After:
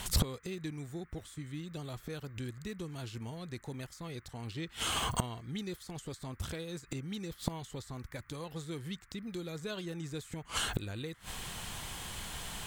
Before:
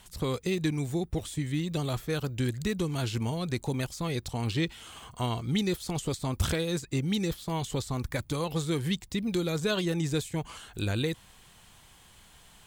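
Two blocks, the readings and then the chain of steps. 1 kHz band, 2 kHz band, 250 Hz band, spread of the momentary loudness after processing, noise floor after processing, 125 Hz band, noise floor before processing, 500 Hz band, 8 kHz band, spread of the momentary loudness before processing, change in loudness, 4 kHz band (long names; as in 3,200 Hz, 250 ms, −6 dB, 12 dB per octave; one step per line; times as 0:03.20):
−4.5 dB, −6.0 dB, −10.5 dB, 10 LU, −59 dBFS, −9.5 dB, −56 dBFS, −11.0 dB, −1.5 dB, 5 LU, −8.5 dB, −4.0 dB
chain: gate with flip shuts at −31 dBFS, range −25 dB
noise in a band 1,100–2,100 Hz −80 dBFS
level +13.5 dB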